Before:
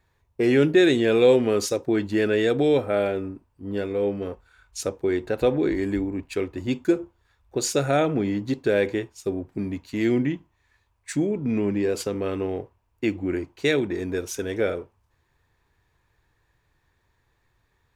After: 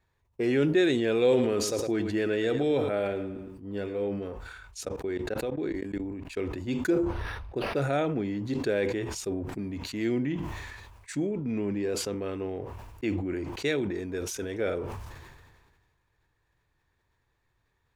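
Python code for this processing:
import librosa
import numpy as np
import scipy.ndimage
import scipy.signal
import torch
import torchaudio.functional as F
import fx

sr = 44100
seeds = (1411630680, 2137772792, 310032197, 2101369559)

y = fx.echo_feedback(x, sr, ms=110, feedback_pct=28, wet_db=-12.0, at=(1.2, 4.08))
y = fx.level_steps(y, sr, step_db=24, at=(4.83, 6.37))
y = fx.resample_linear(y, sr, factor=6, at=(6.9, 7.82))
y = fx.high_shelf(y, sr, hz=11000.0, db=-4.0)
y = fx.sustainer(y, sr, db_per_s=35.0)
y = F.gain(torch.from_numpy(y), -6.5).numpy()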